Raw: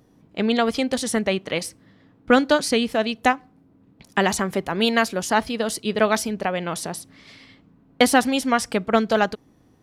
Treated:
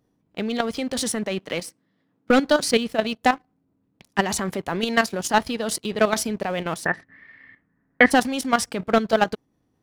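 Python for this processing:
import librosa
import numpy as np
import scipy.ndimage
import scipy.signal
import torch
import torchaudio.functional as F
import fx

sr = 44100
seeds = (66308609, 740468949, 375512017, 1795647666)

y = fx.highpass(x, sr, hz=130.0, slope=24, at=(1.11, 2.45))
y = fx.leveller(y, sr, passes=2)
y = fx.level_steps(y, sr, step_db=11)
y = fx.lowpass_res(y, sr, hz=1800.0, q=16.0, at=(6.85, 8.1), fade=0.02)
y = y * 10.0 ** (-3.5 / 20.0)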